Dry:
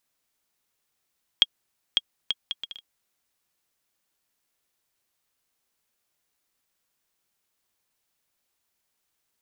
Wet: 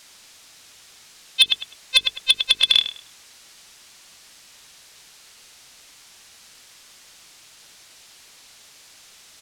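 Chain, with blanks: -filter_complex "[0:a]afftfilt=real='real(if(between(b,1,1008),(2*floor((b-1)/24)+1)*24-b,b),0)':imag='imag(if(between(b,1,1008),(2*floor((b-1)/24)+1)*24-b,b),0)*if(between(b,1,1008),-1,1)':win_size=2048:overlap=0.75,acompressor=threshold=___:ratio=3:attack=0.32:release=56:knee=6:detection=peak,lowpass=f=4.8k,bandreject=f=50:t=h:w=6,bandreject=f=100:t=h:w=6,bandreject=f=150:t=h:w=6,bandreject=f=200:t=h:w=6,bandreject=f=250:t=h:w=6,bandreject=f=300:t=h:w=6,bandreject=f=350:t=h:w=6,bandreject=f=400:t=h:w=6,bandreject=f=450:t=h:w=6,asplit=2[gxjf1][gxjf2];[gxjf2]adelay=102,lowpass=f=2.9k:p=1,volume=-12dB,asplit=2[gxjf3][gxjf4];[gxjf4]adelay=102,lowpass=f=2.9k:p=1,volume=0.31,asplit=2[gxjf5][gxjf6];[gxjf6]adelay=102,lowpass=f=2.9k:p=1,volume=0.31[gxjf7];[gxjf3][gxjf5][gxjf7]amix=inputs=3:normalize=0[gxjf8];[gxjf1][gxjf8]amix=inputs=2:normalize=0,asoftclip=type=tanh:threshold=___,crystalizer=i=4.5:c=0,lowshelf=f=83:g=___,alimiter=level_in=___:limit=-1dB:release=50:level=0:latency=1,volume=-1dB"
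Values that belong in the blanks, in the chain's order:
-34dB, -30dB, 2, 27dB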